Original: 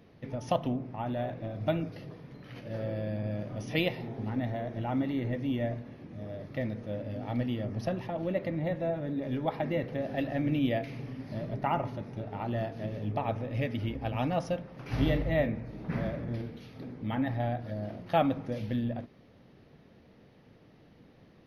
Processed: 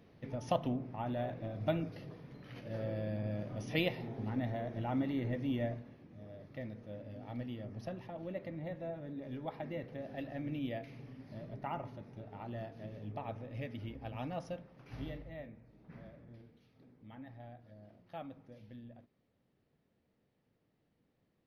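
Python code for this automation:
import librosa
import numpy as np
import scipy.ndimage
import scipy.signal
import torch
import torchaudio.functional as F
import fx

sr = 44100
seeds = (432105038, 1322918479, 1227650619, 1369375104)

y = fx.gain(x, sr, db=fx.line((5.63, -4.0), (6.04, -10.5), (14.6, -10.5), (15.38, -20.0)))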